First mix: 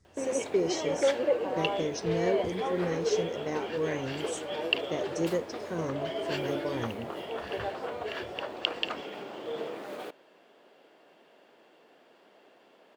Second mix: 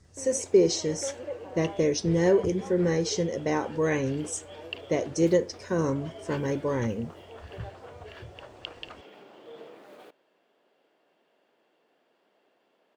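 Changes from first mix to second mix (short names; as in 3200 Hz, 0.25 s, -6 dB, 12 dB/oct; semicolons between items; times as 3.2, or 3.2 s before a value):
speech +7.5 dB; background -10.0 dB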